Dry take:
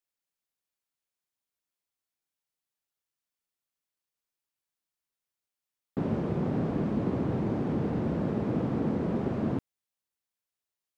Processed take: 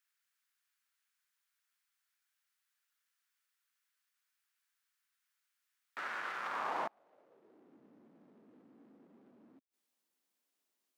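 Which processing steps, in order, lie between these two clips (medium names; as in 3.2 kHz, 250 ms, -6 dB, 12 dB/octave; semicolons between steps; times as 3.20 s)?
overload inside the chain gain 33.5 dB; high-pass sweep 1.5 kHz -> 260 Hz, 6.36–7.83 s; inverted gate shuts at -30 dBFS, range -36 dB; trim +4.5 dB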